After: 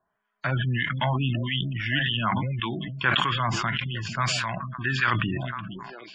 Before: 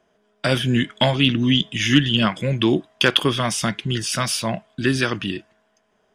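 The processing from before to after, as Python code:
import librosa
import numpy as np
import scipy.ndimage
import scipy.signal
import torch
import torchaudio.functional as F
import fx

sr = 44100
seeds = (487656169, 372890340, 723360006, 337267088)

y = fx.freq_compress(x, sr, knee_hz=3900.0, ratio=1.5)
y = fx.hum_notches(y, sr, base_hz=50, count=4)
y = fx.harmonic_tremolo(y, sr, hz=1.7, depth_pct=70, crossover_hz=1200.0)
y = fx.echo_stepped(y, sr, ms=450, hz=180.0, octaves=1.4, feedback_pct=70, wet_db=-9.5)
y = fx.leveller(y, sr, passes=1)
y = fx.spec_gate(y, sr, threshold_db=-25, keep='strong')
y = fx.graphic_eq(y, sr, hz=(125, 250, 500, 1000, 2000, 4000, 8000), db=(4, -6, -11, 9, 6, -7, -11))
y = fx.sustainer(y, sr, db_per_s=23.0)
y = y * librosa.db_to_amplitude(-8.0)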